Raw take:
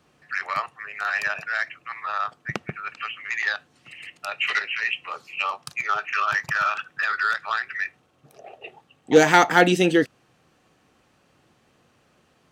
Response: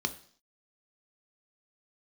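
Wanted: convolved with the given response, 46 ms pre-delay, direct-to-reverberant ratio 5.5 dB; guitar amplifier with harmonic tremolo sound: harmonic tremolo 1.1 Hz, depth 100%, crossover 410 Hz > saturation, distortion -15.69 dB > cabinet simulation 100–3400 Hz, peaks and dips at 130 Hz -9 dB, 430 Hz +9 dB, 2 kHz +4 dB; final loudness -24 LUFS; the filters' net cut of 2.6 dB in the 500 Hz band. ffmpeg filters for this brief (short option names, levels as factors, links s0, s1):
-filter_complex "[0:a]equalizer=f=500:t=o:g=-8.5,asplit=2[s0][s1];[1:a]atrim=start_sample=2205,adelay=46[s2];[s1][s2]afir=irnorm=-1:irlink=0,volume=0.299[s3];[s0][s3]amix=inputs=2:normalize=0,acrossover=split=410[s4][s5];[s4]aeval=exprs='val(0)*(1-1/2+1/2*cos(2*PI*1.1*n/s))':c=same[s6];[s5]aeval=exprs='val(0)*(1-1/2-1/2*cos(2*PI*1.1*n/s))':c=same[s7];[s6][s7]amix=inputs=2:normalize=0,asoftclip=threshold=0.211,highpass=100,equalizer=f=130:t=q:w=4:g=-9,equalizer=f=430:t=q:w=4:g=9,equalizer=f=2000:t=q:w=4:g=4,lowpass=f=3400:w=0.5412,lowpass=f=3400:w=1.3066,volume=1.5"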